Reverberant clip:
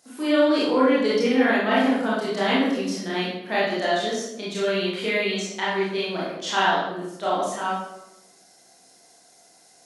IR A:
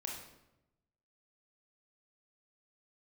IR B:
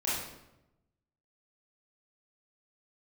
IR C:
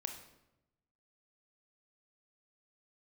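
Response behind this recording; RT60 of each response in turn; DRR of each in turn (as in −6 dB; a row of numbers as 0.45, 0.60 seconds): B; 0.90, 0.90, 0.90 seconds; −1.0, −9.0, 5.0 decibels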